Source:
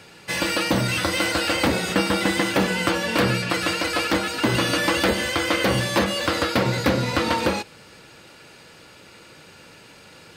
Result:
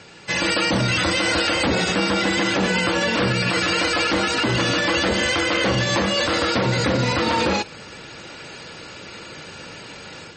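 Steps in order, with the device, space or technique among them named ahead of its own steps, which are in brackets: low-bitrate web radio (level rider gain up to 7 dB; peak limiter -13.5 dBFS, peak gain reduction 10.5 dB; trim +2.5 dB; MP3 32 kbps 44.1 kHz)

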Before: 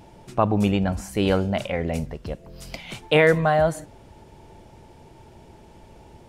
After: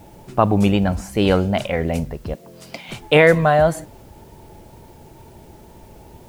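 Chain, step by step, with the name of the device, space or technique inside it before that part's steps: plain cassette with noise reduction switched in (tape noise reduction on one side only decoder only; wow and flutter; white noise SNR 37 dB); 2.34–2.89 s: high-pass 180 Hz 12 dB/octave; trim +4.5 dB

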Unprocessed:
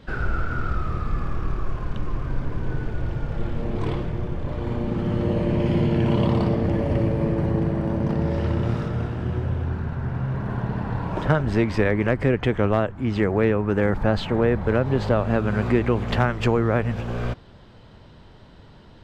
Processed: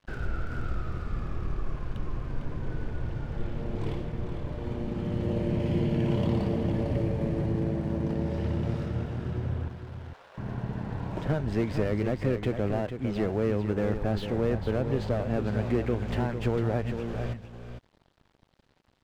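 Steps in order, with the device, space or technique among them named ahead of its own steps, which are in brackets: 9.68–10.38 s: elliptic band-pass 490–2800 Hz; dynamic bell 1.2 kHz, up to -6 dB, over -42 dBFS, Q 1.5; early transistor amplifier (crossover distortion -43.5 dBFS; slew-rate limiter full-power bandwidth 76 Hz); delay 452 ms -8.5 dB; trim -6 dB

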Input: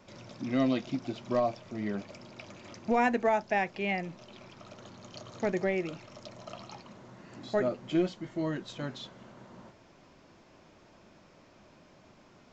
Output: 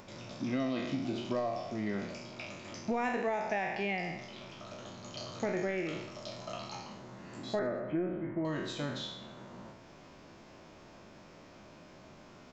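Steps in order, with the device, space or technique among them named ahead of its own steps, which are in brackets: spectral sustain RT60 0.74 s; upward and downward compression (upward compressor, threshold -49 dBFS; compression 5:1, threshold -30 dBFS, peak gain reduction 9 dB); 7.59–8.45 s: steep low-pass 2.1 kHz 36 dB/octave; feedback delay 126 ms, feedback 44%, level -20 dB

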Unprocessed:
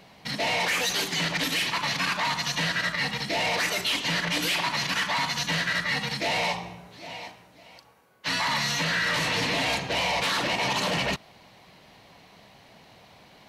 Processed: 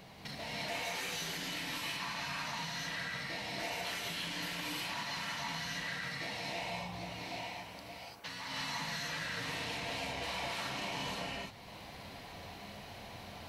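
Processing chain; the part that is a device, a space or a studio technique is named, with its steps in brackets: ASMR close-microphone chain (bass shelf 140 Hz +6 dB; compression, threshold -42 dBFS, peak gain reduction 17.5 dB; treble shelf 11 kHz +5 dB); gated-style reverb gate 370 ms rising, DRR -5.5 dB; trim -3 dB

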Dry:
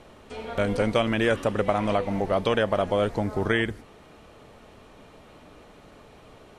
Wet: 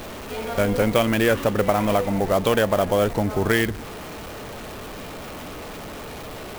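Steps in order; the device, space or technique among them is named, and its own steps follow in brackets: early CD player with a faulty converter (jump at every zero crossing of -34.5 dBFS; sampling jitter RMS 0.025 ms); trim +3 dB

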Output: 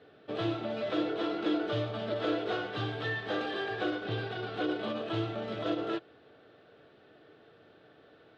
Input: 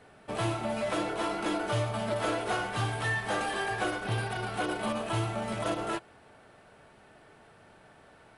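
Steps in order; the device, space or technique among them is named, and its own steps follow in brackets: guitar cabinet (cabinet simulation 100–4400 Hz, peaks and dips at 200 Hz -4 dB, 310 Hz +7 dB, 460 Hz +7 dB, 930 Hz -10 dB, 2.2 kHz -5 dB, 3.6 kHz +6 dB); trim -3 dB

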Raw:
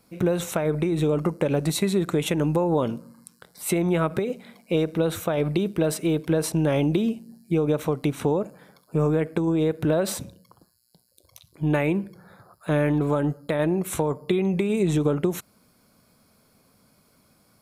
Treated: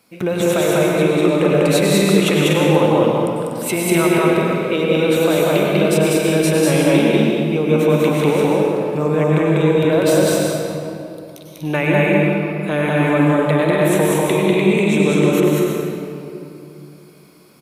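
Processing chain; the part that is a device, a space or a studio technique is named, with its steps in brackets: stadium PA (high-pass 230 Hz 6 dB/octave; peaking EQ 2.6 kHz +6 dB 0.84 oct; loudspeakers at several distances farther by 67 m -1 dB, 83 m -6 dB; reverberation RT60 2.7 s, pre-delay 90 ms, DRR -1.5 dB); trim +3.5 dB

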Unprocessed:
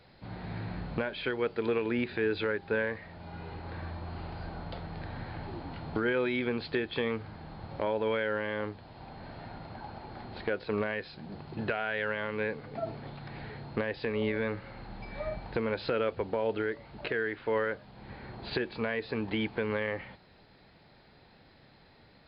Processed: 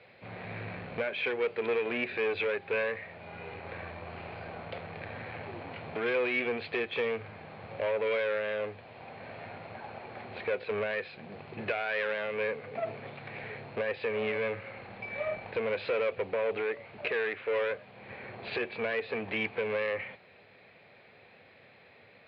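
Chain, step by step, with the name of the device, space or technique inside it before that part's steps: guitar amplifier (valve stage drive 31 dB, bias 0.45; tone controls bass -12 dB, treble -14 dB; cabinet simulation 100–4400 Hz, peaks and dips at 100 Hz +9 dB, 310 Hz -8 dB, 500 Hz +3 dB, 890 Hz -7 dB, 1.4 kHz -4 dB, 2.4 kHz +9 dB); trim +6.5 dB

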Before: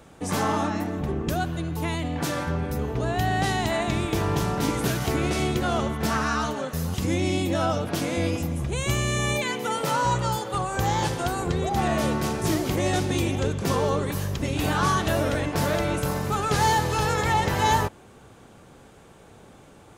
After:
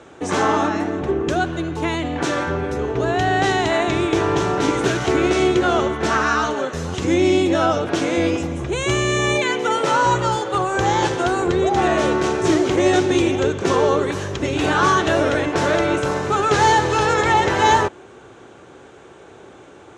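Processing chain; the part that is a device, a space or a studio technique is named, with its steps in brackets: car door speaker (cabinet simulation 97–7200 Hz, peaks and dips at 99 Hz -4 dB, 150 Hz -7 dB, 210 Hz -8 dB, 370 Hz +7 dB, 1.5 kHz +3 dB, 4.8 kHz -6 dB); trim +6.5 dB

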